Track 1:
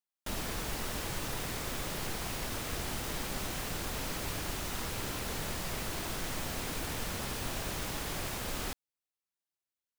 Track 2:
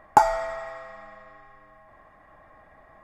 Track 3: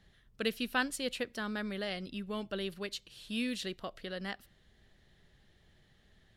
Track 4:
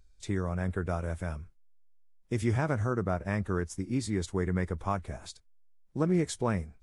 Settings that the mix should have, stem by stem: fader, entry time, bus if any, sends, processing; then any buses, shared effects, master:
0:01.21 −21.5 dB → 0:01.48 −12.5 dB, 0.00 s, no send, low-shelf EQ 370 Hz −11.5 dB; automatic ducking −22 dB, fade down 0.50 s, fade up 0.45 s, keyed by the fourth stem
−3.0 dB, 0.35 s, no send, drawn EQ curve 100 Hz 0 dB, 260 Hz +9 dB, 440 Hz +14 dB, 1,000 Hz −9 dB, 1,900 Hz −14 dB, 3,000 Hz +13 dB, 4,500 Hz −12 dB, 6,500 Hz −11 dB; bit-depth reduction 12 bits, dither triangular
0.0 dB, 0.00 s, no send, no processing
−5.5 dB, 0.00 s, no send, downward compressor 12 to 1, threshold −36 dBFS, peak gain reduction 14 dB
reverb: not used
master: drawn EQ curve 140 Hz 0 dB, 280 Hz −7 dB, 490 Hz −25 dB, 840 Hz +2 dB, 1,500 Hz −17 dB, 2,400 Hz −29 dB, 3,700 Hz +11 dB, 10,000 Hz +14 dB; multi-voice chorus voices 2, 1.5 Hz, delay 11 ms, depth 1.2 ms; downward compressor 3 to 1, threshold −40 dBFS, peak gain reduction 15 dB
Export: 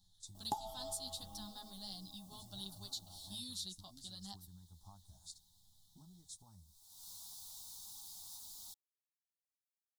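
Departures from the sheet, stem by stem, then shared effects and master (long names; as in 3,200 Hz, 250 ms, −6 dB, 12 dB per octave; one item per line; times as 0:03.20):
stem 1 −21.5 dB → −28.0 dB
stem 3 0.0 dB → −7.0 dB
stem 4 −5.5 dB → −15.0 dB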